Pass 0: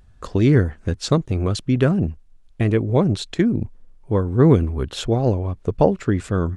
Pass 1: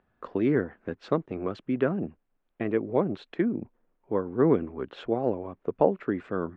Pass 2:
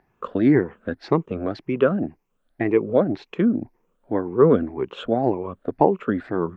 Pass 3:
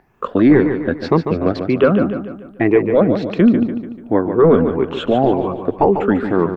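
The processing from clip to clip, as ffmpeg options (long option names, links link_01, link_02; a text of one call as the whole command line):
ffmpeg -i in.wav -filter_complex "[0:a]lowpass=3900,acrossover=split=200 2600:gain=0.0708 1 0.126[link_01][link_02][link_03];[link_01][link_02][link_03]amix=inputs=3:normalize=0,volume=-5dB" out.wav
ffmpeg -i in.wav -af "afftfilt=real='re*pow(10,11/40*sin(2*PI*(0.76*log(max(b,1)*sr/1024/100)/log(2)-(1.9)*(pts-256)/sr)))':imag='im*pow(10,11/40*sin(2*PI*(0.76*log(max(b,1)*sr/1024/100)/log(2)-(1.9)*(pts-256)/sr)))':win_size=1024:overlap=0.75,volume=5dB" out.wav
ffmpeg -i in.wav -filter_complex "[0:a]apsyclip=12.5dB,asplit=2[link_01][link_02];[link_02]aecho=0:1:146|292|438|584|730:0.398|0.183|0.0842|0.0388|0.0178[link_03];[link_01][link_03]amix=inputs=2:normalize=0,volume=-4.5dB" out.wav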